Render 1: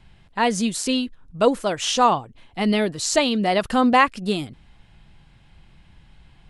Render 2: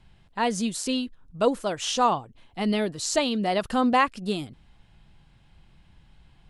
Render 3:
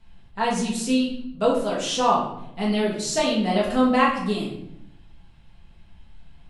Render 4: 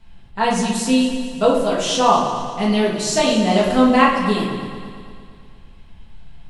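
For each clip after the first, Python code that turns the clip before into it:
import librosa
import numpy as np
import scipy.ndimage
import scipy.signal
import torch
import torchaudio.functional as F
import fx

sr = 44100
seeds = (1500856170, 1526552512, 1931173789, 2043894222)

y1 = fx.peak_eq(x, sr, hz=2100.0, db=-2.5, octaves=0.7)
y1 = y1 * librosa.db_to_amplitude(-4.5)
y2 = fx.room_shoebox(y1, sr, seeds[0], volume_m3=190.0, walls='mixed', distance_m=1.6)
y2 = y2 * librosa.db_to_amplitude(-3.5)
y3 = fx.echo_heads(y2, sr, ms=114, heads='first and second', feedback_pct=58, wet_db=-14.5)
y3 = y3 * librosa.db_to_amplitude(5.0)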